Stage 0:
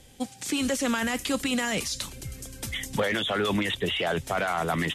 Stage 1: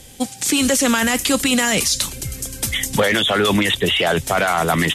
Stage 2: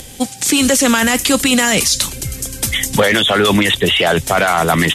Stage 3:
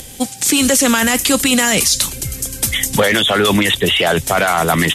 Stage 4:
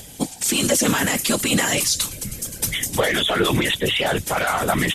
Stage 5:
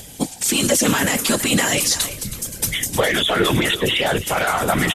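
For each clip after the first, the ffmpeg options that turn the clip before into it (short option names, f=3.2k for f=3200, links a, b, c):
-af "highshelf=f=5.3k:g=7.5,volume=9dB"
-af "acompressor=mode=upward:threshold=-33dB:ratio=2.5,volume=4dB"
-af "highshelf=f=10k:g=6,volume=-1dB"
-af "afftfilt=real='hypot(re,im)*cos(2*PI*random(0))':imag='hypot(re,im)*sin(2*PI*random(1))':win_size=512:overlap=0.75"
-filter_complex "[0:a]asplit=2[a][b];[b]adelay=330,highpass=300,lowpass=3.4k,asoftclip=type=hard:threshold=-14.5dB,volume=-12dB[c];[a][c]amix=inputs=2:normalize=0,volume=1.5dB"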